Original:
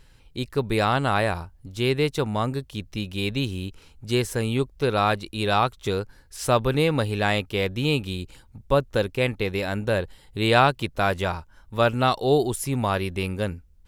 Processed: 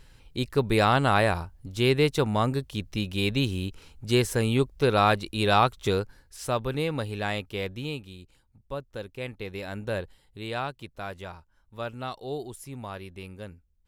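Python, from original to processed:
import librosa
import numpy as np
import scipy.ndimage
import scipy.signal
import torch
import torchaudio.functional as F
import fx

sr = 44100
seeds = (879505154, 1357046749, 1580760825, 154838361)

y = fx.gain(x, sr, db=fx.line((5.95, 0.5), (6.44, -7.0), (7.69, -7.0), (8.1, -14.5), (8.92, -14.5), (9.98, -6.5), (10.45, -14.0)))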